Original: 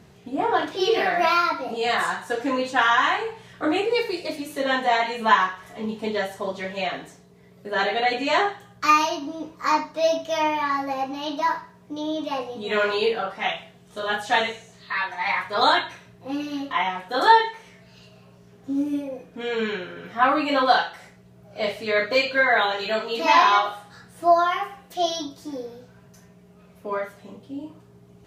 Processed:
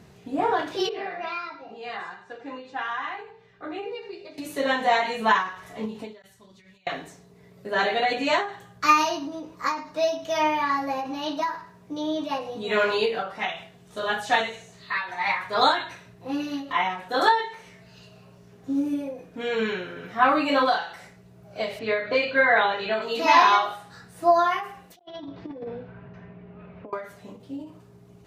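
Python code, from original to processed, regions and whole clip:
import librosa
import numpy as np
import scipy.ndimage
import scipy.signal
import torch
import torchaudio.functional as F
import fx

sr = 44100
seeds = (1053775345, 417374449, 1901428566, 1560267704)

y = fx.chain(x, sr, fx.air_absorb(metres=160.0),
    fx.hum_notches(base_hz=50, count=10),
    fx.comb_fb(f0_hz=400.0, decay_s=0.15, harmonics='all', damping=0.0, mix_pct=80), at=(0.89, 4.38))
y = fx.chain(y, sr, fx.tone_stack(knobs='6-0-2'),
    fx.over_compress(threshold_db=-53.0, ratio=-0.5), at=(6.22, 6.87))
y = fx.chain(y, sr, fx.lowpass(hz=3400.0, slope=12),
    fx.doubler(ms=26.0, db=-11.5), at=(21.79, 23.02))
y = fx.chain(y, sr, fx.lowpass(hz=2700.0, slope=24),
    fx.over_compress(threshold_db=-36.0, ratio=-0.5), at=(24.99, 26.93))
y = fx.notch(y, sr, hz=3200.0, q=24.0)
y = fx.end_taper(y, sr, db_per_s=110.0)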